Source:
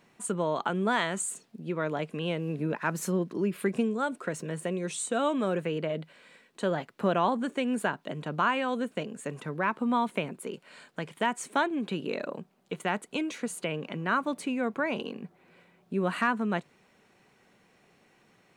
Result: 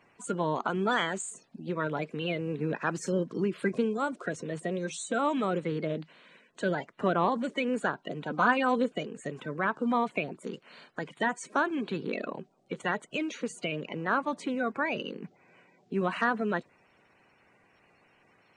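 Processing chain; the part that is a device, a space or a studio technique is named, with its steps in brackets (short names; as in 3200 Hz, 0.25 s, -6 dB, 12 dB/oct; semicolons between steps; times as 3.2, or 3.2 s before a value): clip after many re-uploads (LPF 7600 Hz 24 dB/oct; bin magnitudes rounded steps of 30 dB); 8.3–8.92 comb 4 ms, depth 76%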